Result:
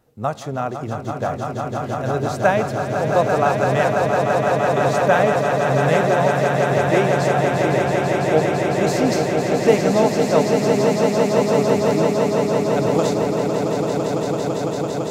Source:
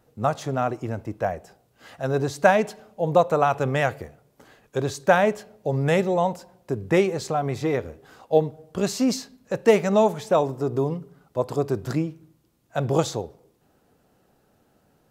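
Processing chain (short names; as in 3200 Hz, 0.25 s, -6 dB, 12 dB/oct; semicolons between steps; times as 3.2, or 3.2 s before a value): swelling echo 0.168 s, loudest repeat 8, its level -6.5 dB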